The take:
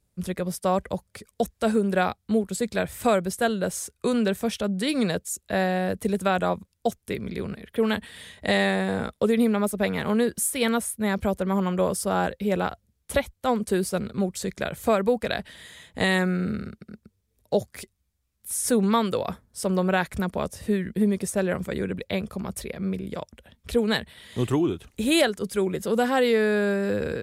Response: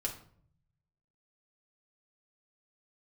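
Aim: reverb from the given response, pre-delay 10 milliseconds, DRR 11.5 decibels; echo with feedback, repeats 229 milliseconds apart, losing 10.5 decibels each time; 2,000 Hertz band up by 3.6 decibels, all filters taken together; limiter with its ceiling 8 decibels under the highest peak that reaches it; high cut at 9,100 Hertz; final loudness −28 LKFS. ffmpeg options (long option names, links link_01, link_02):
-filter_complex "[0:a]lowpass=9100,equalizer=frequency=2000:width_type=o:gain=4.5,alimiter=limit=-15dB:level=0:latency=1,aecho=1:1:229|458|687:0.299|0.0896|0.0269,asplit=2[link_01][link_02];[1:a]atrim=start_sample=2205,adelay=10[link_03];[link_02][link_03]afir=irnorm=-1:irlink=0,volume=-13dB[link_04];[link_01][link_04]amix=inputs=2:normalize=0,volume=-1.5dB"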